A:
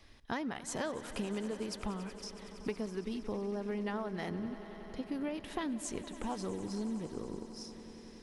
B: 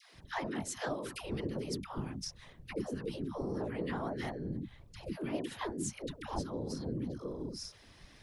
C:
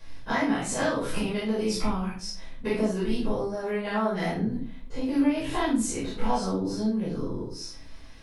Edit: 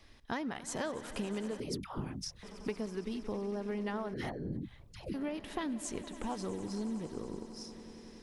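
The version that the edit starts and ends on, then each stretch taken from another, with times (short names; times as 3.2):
A
1.6–2.43 from B
4.14–5.14 from B
not used: C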